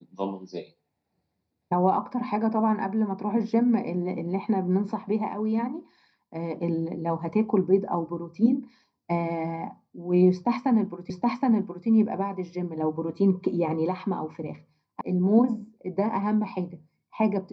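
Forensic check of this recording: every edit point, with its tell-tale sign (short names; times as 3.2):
11.1 repeat of the last 0.77 s
15.01 sound cut off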